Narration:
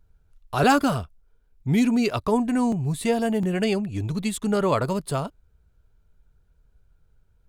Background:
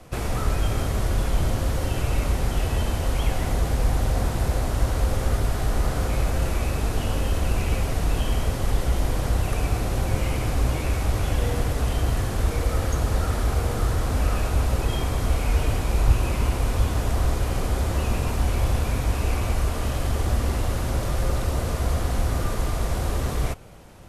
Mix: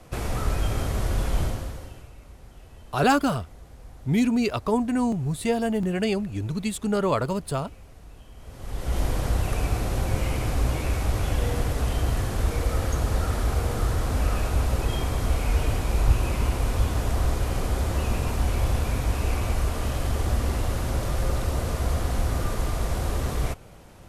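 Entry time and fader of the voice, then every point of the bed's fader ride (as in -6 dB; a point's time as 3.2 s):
2.40 s, -1.5 dB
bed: 1.42 s -2 dB
2.14 s -23.5 dB
8.34 s -23.5 dB
8.98 s -1.5 dB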